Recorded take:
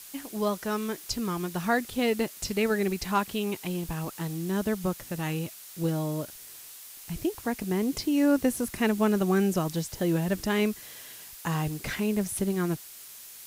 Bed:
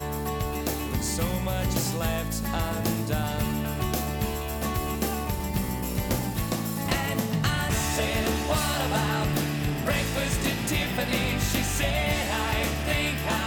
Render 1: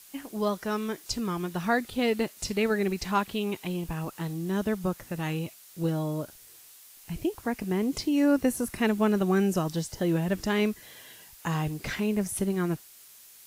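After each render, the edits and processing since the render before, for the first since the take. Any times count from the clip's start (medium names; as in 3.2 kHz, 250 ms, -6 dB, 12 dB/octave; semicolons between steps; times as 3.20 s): noise print and reduce 6 dB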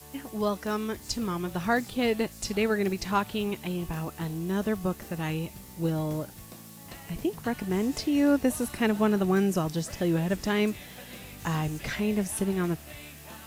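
add bed -19 dB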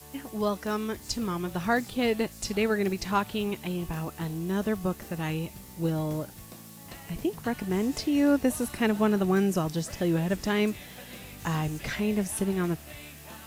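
no audible change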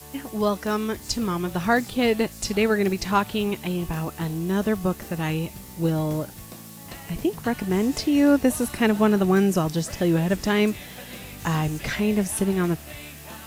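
trim +5 dB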